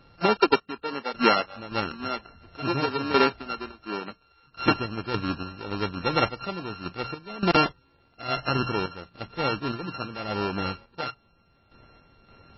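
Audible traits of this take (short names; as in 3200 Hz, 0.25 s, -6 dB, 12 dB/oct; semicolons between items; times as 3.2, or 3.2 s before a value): a buzz of ramps at a fixed pitch in blocks of 32 samples; random-step tremolo, depth 85%; MP3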